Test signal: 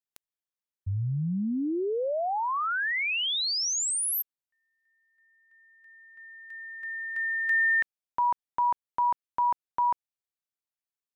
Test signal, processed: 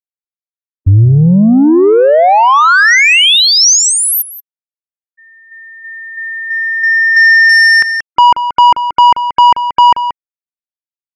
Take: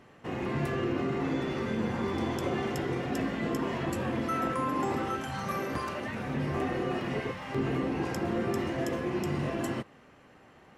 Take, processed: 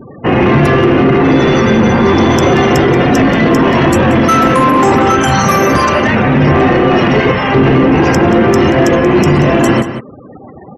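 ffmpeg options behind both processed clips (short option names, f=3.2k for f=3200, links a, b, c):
-filter_complex "[0:a]acrossover=split=2900[a][b];[b]acompressor=threshold=-39dB:ratio=4:attack=1:release=60[c];[a][c]amix=inputs=2:normalize=0,afftfilt=real='re*gte(hypot(re,im),0.00447)':imag='im*gte(hypot(re,im),0.00447)':win_size=1024:overlap=0.75,asoftclip=type=tanh:threshold=-26.5dB,equalizer=f=5.9k:t=o:w=0.22:g=11,asplit=2[d][e];[e]adelay=180.8,volume=-12dB,highshelf=f=4k:g=-4.07[f];[d][f]amix=inputs=2:normalize=0,alimiter=level_in=28dB:limit=-1dB:release=50:level=0:latency=1,volume=-1.5dB"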